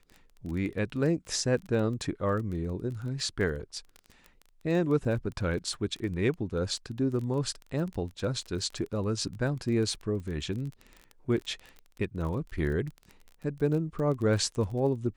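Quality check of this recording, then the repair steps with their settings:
crackle 22 per s -35 dBFS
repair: de-click

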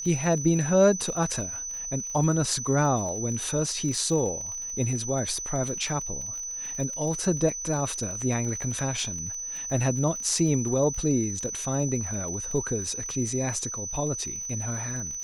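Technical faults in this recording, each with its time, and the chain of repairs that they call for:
crackle 35 per s -34 dBFS
whine 6 kHz -32 dBFS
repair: de-click; band-stop 6 kHz, Q 30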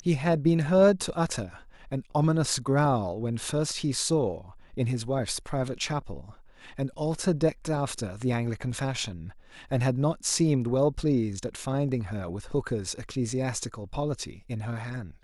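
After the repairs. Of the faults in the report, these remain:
nothing left

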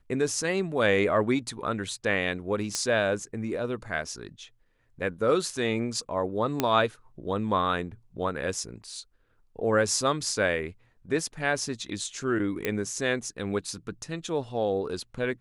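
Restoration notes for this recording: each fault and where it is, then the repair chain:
2.75 s: pop -13 dBFS
6.60 s: pop -9 dBFS
12.65 s: pop -13 dBFS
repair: de-click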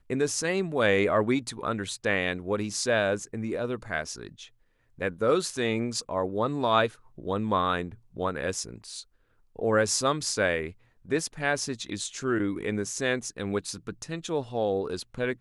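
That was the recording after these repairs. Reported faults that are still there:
nothing left

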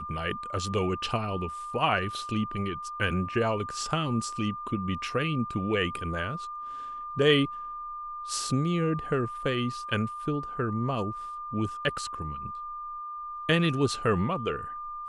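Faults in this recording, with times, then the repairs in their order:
whine 1.2 kHz -35 dBFS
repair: band-stop 1.2 kHz, Q 30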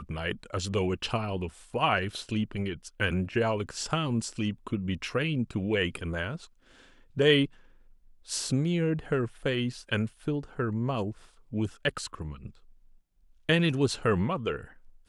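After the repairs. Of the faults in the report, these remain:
nothing left

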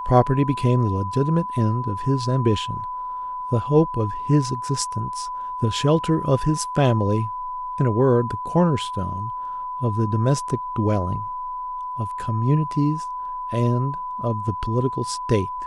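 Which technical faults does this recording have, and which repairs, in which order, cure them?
whine 1 kHz -27 dBFS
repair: band-stop 1 kHz, Q 30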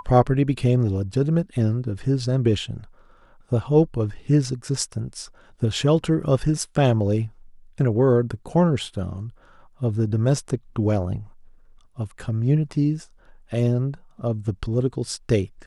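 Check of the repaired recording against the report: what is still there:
nothing left

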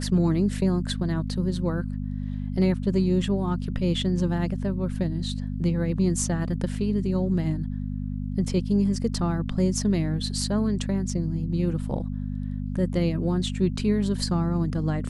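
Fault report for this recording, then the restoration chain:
hum 50 Hz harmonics 5 -30 dBFS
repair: de-hum 50 Hz, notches 5

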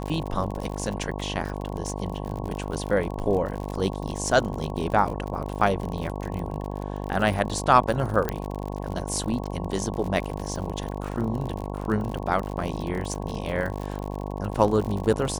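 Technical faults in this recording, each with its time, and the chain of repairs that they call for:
buzz 50 Hz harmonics 22 -32 dBFS
crackle 60 per s -30 dBFS
8.29 s: pop -12 dBFS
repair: de-click; de-hum 50 Hz, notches 22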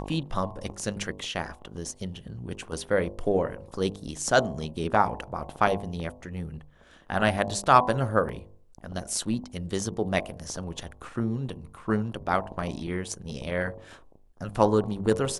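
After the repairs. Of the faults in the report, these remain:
8.29 s: pop

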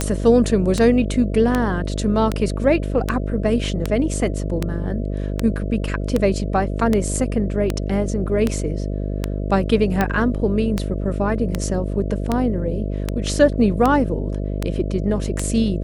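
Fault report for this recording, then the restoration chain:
buzz 50 Hz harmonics 13 -24 dBFS
tick 78 rpm -6 dBFS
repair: de-click; de-hum 50 Hz, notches 13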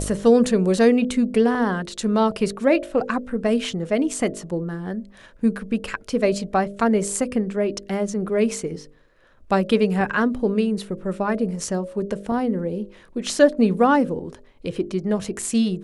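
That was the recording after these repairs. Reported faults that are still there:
nothing left

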